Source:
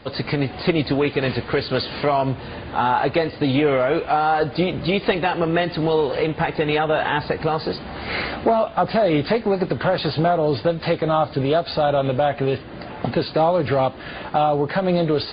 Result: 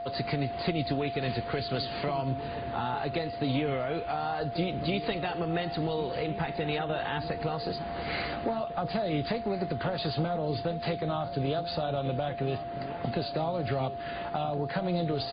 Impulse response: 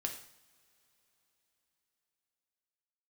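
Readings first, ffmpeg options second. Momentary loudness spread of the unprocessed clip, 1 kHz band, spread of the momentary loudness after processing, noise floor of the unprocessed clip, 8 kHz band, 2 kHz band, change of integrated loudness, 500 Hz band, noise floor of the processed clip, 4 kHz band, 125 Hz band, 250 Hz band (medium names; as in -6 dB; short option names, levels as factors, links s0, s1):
6 LU, -11.0 dB, 3 LU, -36 dBFS, no reading, -11.5 dB, -10.5 dB, -11.5 dB, -37 dBFS, -8.0 dB, -7.5 dB, -10.0 dB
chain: -filter_complex "[0:a]acrossover=split=220|3000[s0][s1][s2];[s1]acompressor=threshold=0.0447:ratio=2.5[s3];[s0][s3][s2]amix=inputs=3:normalize=0,aeval=exprs='val(0)+0.0447*sin(2*PI*690*n/s)':c=same,asplit=2[s4][s5];[s5]adelay=1399,volume=0.251,highshelf=f=4000:g=-31.5[s6];[s4][s6]amix=inputs=2:normalize=0,volume=0.447"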